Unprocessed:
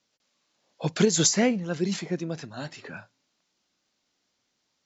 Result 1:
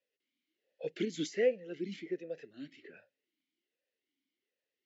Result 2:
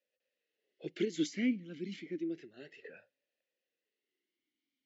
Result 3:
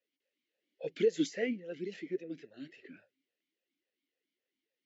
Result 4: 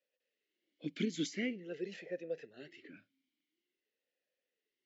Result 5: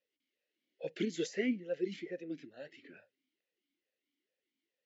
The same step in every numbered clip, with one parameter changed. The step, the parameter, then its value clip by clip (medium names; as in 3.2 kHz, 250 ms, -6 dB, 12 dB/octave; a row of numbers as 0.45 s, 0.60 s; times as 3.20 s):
talking filter, rate: 1.3 Hz, 0.3 Hz, 3.6 Hz, 0.47 Hz, 2.3 Hz